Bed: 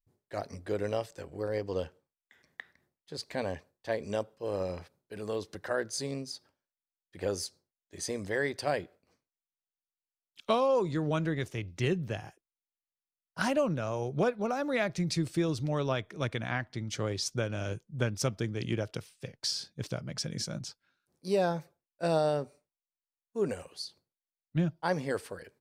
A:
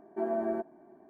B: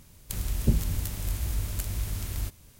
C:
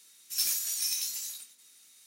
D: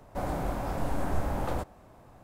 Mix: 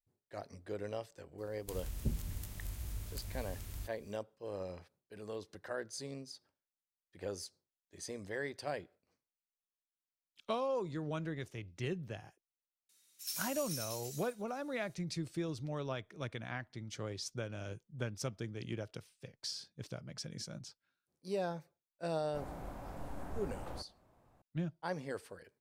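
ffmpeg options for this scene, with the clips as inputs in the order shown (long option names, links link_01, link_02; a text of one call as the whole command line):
ffmpeg -i bed.wav -i cue0.wav -i cue1.wav -i cue2.wav -i cue3.wav -filter_complex "[0:a]volume=-9dB[link_01];[2:a]atrim=end=2.79,asetpts=PTS-STARTPTS,volume=-12.5dB,afade=type=in:duration=0.004:curve=hsin,afade=type=out:start_time=2.786:duration=0.004:curve=hsin,adelay=1380[link_02];[3:a]atrim=end=2.06,asetpts=PTS-STARTPTS,volume=-12dB,afade=type=in:duration=0.004:curve=hsin,afade=type=out:start_time=2.056:duration=0.004:curve=hsin,adelay=12890[link_03];[4:a]atrim=end=2.23,asetpts=PTS-STARTPTS,volume=-14dB,afade=type=in:duration=0.004:curve=hsin,afade=type=out:start_time=2.226:duration=0.004:curve=hsin,adelay=22190[link_04];[link_01][link_02][link_03][link_04]amix=inputs=4:normalize=0" out.wav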